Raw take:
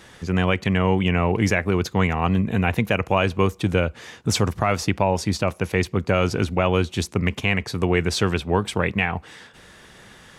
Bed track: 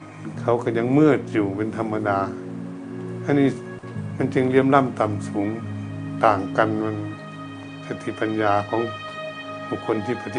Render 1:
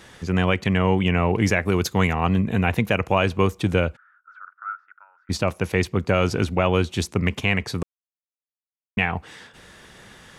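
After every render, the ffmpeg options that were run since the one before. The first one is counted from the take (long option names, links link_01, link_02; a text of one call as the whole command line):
ffmpeg -i in.wav -filter_complex "[0:a]asettb=1/sr,asplit=3[link_01][link_02][link_03];[link_01]atrim=end=1.654[link_04];[link_02]atrim=start=1.65:end=2.12,asetpts=PTS-STARTPTS,afade=type=in:duration=0.004:curve=qsin,afade=type=out:start_time=0.466:duration=0.004:curve=qsin,highshelf=frequency=6200:gain=11[link_05];[link_03]atrim=start=2.116[link_06];[link_04][link_05]acrossfade=duration=0.004:curve1=hsin:curve2=qsin[link_07];[link_07][link_06]acrossfade=duration=0.004:curve1=qsin:curve2=hsin,asplit=3[link_08][link_09][link_10];[link_08]afade=type=out:start_time=3.95:duration=0.02[link_11];[link_09]asuperpass=centerf=1400:order=4:qfactor=7.1,afade=type=in:start_time=3.95:duration=0.02,afade=type=out:start_time=5.29:duration=0.02[link_12];[link_10]afade=type=in:start_time=5.29:duration=0.02[link_13];[link_11][link_12][link_13]amix=inputs=3:normalize=0,asplit=3[link_14][link_15][link_16];[link_14]atrim=end=7.83,asetpts=PTS-STARTPTS,afade=type=out:start_time=7.826:duration=0.004:curve=hsin[link_17];[link_15]atrim=start=7.83:end=8.97,asetpts=PTS-STARTPTS,volume=0[link_18];[link_16]atrim=start=8.97,asetpts=PTS-STARTPTS,afade=type=in:duration=0.004:curve=hsin[link_19];[link_17][link_18][link_19]concat=n=3:v=0:a=1" out.wav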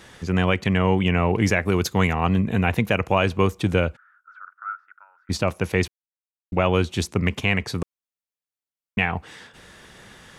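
ffmpeg -i in.wav -filter_complex "[0:a]asplit=3[link_01][link_02][link_03];[link_01]atrim=end=5.88,asetpts=PTS-STARTPTS,afade=type=out:start_time=5.876:duration=0.004:curve=hsin[link_04];[link_02]atrim=start=5.88:end=6.52,asetpts=PTS-STARTPTS,volume=0[link_05];[link_03]atrim=start=6.52,asetpts=PTS-STARTPTS,afade=type=in:duration=0.004:curve=hsin[link_06];[link_04][link_05][link_06]concat=n=3:v=0:a=1" out.wav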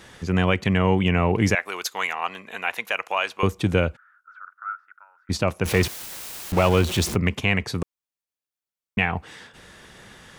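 ffmpeg -i in.wav -filter_complex "[0:a]asettb=1/sr,asplit=3[link_01][link_02][link_03];[link_01]atrim=end=1.554[link_04];[link_02]atrim=start=1.55:end=3.43,asetpts=PTS-STARTPTS,afade=type=in:duration=0.004:curve=qsin,afade=type=out:start_time=1.876:duration=0.004:curve=qsin,highpass=880[link_05];[link_03]atrim=start=3.426[link_06];[link_04][link_05]acrossfade=duration=0.004:curve1=hsin:curve2=qsin[link_07];[link_07][link_06]acrossfade=duration=0.004:curve1=qsin:curve2=hsin,asettb=1/sr,asplit=3[link_08][link_09][link_10];[link_08]atrim=end=5.654[link_11];[link_09]atrim=start=5.65:end=7.16,asetpts=PTS-STARTPTS,afade=type=in:duration=0.004:curve=qsin,afade=type=out:start_time=1.506:duration=0.004:curve=qsin,aeval=exprs='val(0)+0.5*0.0596*sgn(val(0))':channel_layout=same[link_12];[link_10]atrim=start=7.156[link_13];[link_11][link_12]acrossfade=duration=0.004:curve1=hsin:curve2=qsin[link_14];[link_14][link_13]acrossfade=duration=0.004:curve1=qsin:curve2=hsin" out.wav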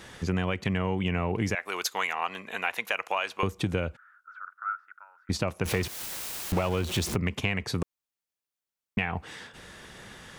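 ffmpeg -i in.wav -af "acompressor=threshold=-24dB:ratio=6" out.wav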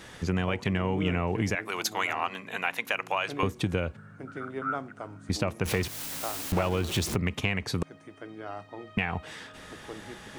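ffmpeg -i in.wav -i bed.wav -filter_complex "[1:a]volume=-19.5dB[link_01];[0:a][link_01]amix=inputs=2:normalize=0" out.wav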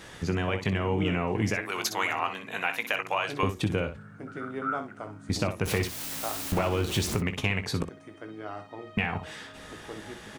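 ffmpeg -i in.wav -af "aecho=1:1:19|62:0.316|0.316" out.wav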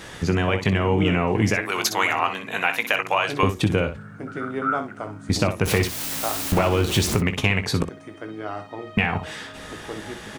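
ffmpeg -i in.wav -af "volume=7dB" out.wav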